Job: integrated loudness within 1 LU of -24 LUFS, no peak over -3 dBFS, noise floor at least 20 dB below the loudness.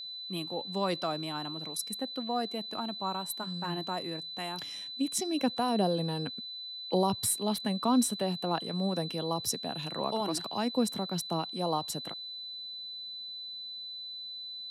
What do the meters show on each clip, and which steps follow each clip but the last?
steady tone 4000 Hz; tone level -39 dBFS; loudness -33.0 LUFS; peak -15.0 dBFS; loudness target -24.0 LUFS
-> notch 4000 Hz, Q 30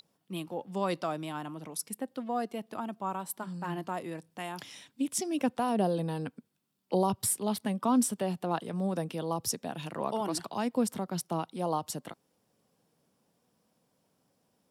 steady tone none; loudness -33.0 LUFS; peak -15.5 dBFS; loudness target -24.0 LUFS
-> gain +9 dB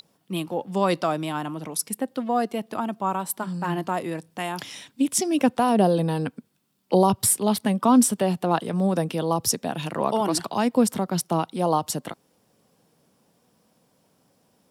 loudness -24.0 LUFS; peak -6.5 dBFS; noise floor -66 dBFS

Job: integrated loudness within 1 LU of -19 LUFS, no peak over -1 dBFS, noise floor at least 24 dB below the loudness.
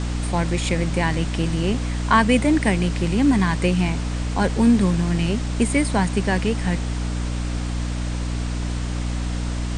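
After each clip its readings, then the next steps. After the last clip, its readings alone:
hum 60 Hz; harmonics up to 300 Hz; hum level -22 dBFS; noise floor -25 dBFS; noise floor target -46 dBFS; loudness -22.0 LUFS; peak -2.5 dBFS; loudness target -19.0 LUFS
-> de-hum 60 Hz, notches 5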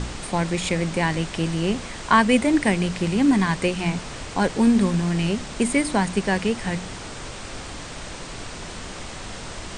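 hum none; noise floor -36 dBFS; noise floor target -46 dBFS
-> noise print and reduce 10 dB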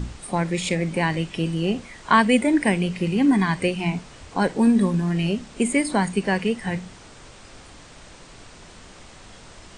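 noise floor -46 dBFS; noise floor target -47 dBFS
-> noise print and reduce 6 dB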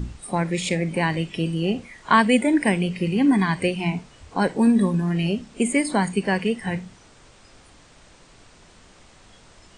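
noise floor -52 dBFS; loudness -22.5 LUFS; peak -3.0 dBFS; loudness target -19.0 LUFS
-> gain +3.5 dB; limiter -1 dBFS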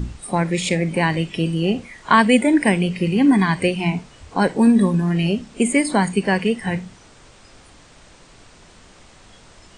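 loudness -19.0 LUFS; peak -1.0 dBFS; noise floor -48 dBFS

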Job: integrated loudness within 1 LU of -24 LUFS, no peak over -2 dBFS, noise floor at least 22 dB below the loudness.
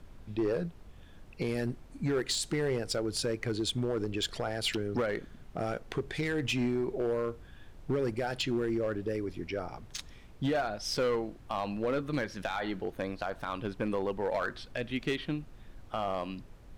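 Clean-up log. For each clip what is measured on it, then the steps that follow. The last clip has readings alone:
clipped 1.7%; flat tops at -24.5 dBFS; noise floor -52 dBFS; noise floor target -56 dBFS; loudness -33.5 LUFS; peak -24.5 dBFS; loudness target -24.0 LUFS
-> clip repair -24.5 dBFS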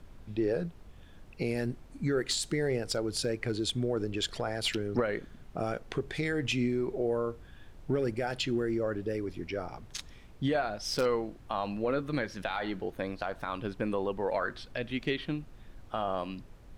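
clipped 0.0%; noise floor -52 dBFS; noise floor target -55 dBFS
-> noise print and reduce 6 dB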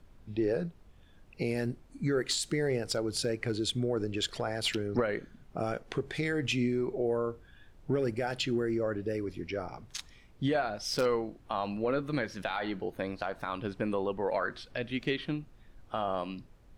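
noise floor -57 dBFS; loudness -33.0 LUFS; peak -15.5 dBFS; loudness target -24.0 LUFS
-> gain +9 dB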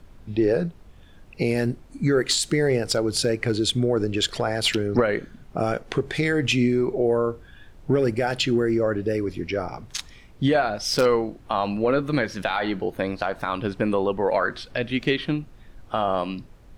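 loudness -24.0 LUFS; peak -6.5 dBFS; noise floor -48 dBFS

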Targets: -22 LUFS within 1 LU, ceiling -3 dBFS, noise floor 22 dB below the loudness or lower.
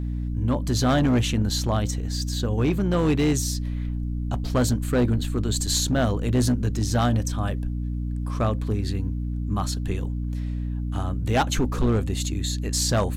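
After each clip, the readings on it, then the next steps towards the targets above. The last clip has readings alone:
clipped 2.1%; flat tops at -15.5 dBFS; hum 60 Hz; harmonics up to 300 Hz; hum level -25 dBFS; loudness -25.0 LUFS; peak -15.5 dBFS; loudness target -22.0 LUFS
-> clip repair -15.5 dBFS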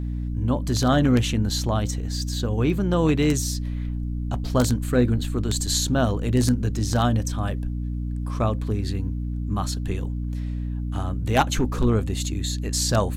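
clipped 0.0%; hum 60 Hz; harmonics up to 300 Hz; hum level -25 dBFS
-> notches 60/120/180/240/300 Hz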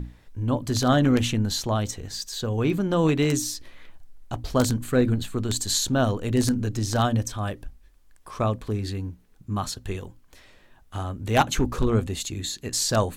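hum none; loudness -25.0 LUFS; peak -5.0 dBFS; loudness target -22.0 LUFS
-> gain +3 dB; limiter -3 dBFS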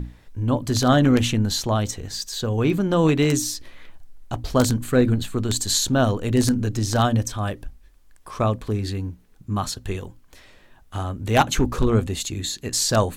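loudness -22.0 LUFS; peak -3.0 dBFS; noise floor -53 dBFS

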